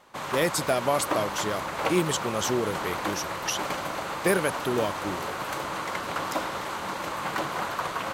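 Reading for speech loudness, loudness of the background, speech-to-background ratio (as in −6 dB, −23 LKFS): −28.5 LKFS, −31.5 LKFS, 3.0 dB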